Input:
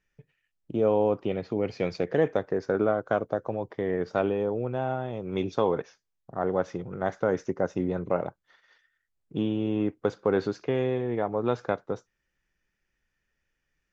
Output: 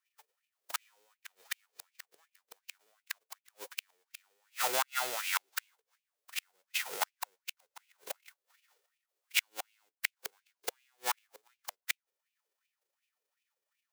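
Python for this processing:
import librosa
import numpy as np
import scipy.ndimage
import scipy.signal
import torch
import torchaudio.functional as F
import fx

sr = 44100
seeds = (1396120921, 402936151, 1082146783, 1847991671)

y = fx.envelope_flatten(x, sr, power=0.1)
y = fx.gate_flip(y, sr, shuts_db=-16.0, range_db=-38)
y = fx.filter_lfo_highpass(y, sr, shape='sine', hz=2.7, low_hz=410.0, high_hz=2600.0, q=4.9)
y = fx.upward_expand(y, sr, threshold_db=-47.0, expansion=1.5)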